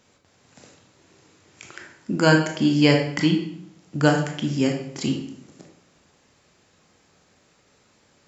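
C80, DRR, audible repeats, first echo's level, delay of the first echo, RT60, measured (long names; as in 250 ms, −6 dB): 9.0 dB, 2.0 dB, no echo audible, no echo audible, no echo audible, 0.70 s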